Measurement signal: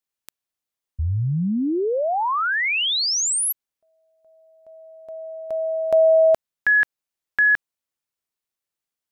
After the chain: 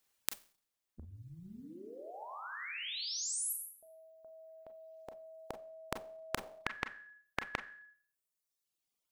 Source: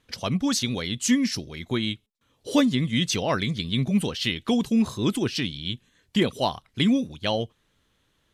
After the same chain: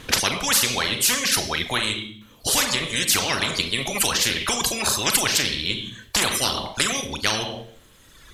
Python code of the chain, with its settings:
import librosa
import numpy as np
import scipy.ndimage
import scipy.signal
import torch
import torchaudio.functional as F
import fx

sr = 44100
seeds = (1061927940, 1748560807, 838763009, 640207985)

y = fx.rev_schroeder(x, sr, rt60_s=0.52, comb_ms=29, drr_db=6.0)
y = fx.rider(y, sr, range_db=10, speed_s=2.0)
y = fx.dereverb_blind(y, sr, rt60_s=1.3)
y = fx.spectral_comp(y, sr, ratio=10.0)
y = y * 10.0 ** (5.0 / 20.0)